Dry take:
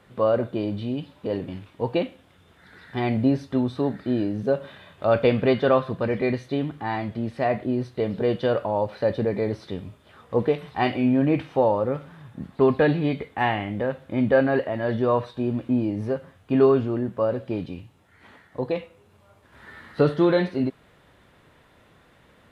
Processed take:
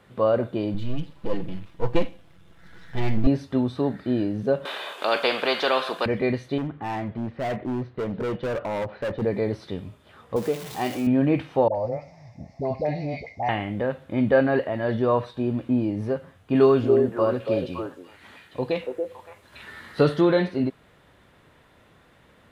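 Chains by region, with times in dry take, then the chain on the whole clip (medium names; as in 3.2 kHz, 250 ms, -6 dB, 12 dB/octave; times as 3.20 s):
0.74–3.27 s: partial rectifier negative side -12 dB + bass shelf 130 Hz +12 dB + comb 6 ms, depth 51%
4.65–6.06 s: high-pass 420 Hz 24 dB/octave + peaking EQ 1.9 kHz -7 dB 0.35 oct + spectrum-flattening compressor 2:1
6.58–9.22 s: low-pass 2.3 kHz + hard clipper -24.5 dBFS + tape noise reduction on one side only decoder only
10.36–11.07 s: jump at every zero crossing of -27.5 dBFS + high-pass 300 Hz 6 dB/octave + peaking EQ 1.6 kHz -8 dB 3 oct
11.68–13.49 s: FFT filter 120 Hz 0 dB, 170 Hz -6 dB, 420 Hz -10 dB, 670 Hz +9 dB, 1.5 kHz -24 dB, 2.1 kHz +5 dB, 3.2 kHz -19 dB, 5.4 kHz +14 dB, 8.8 kHz -13 dB + compression 2.5:1, threshold -23 dBFS + phase dispersion highs, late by 71 ms, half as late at 810 Hz
16.55–20.21 s: treble shelf 2.6 kHz +8 dB + repeats whose band climbs or falls 283 ms, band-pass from 450 Hz, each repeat 1.4 oct, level -2 dB
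whole clip: none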